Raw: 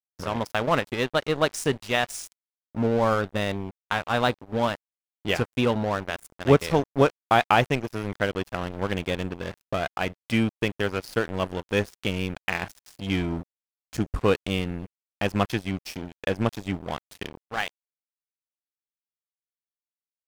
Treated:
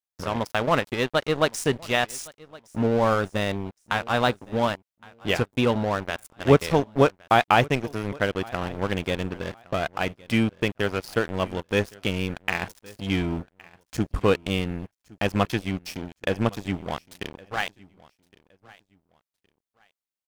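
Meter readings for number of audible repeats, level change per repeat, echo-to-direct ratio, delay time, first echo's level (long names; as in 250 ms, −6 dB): 2, −11.5 dB, −22.5 dB, 1,115 ms, −23.0 dB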